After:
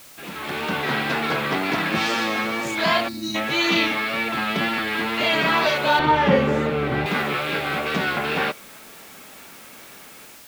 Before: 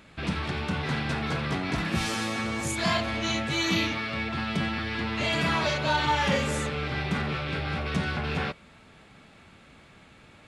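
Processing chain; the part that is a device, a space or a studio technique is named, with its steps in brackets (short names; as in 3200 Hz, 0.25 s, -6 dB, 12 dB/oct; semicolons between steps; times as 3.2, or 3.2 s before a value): dictaphone (BPF 280–4300 Hz; AGC gain up to 13 dB; wow and flutter; white noise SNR 22 dB); 3.08–3.35 spectral gain 390–3700 Hz -22 dB; 5.99–7.06 tilt -3.5 dB/oct; gain -4 dB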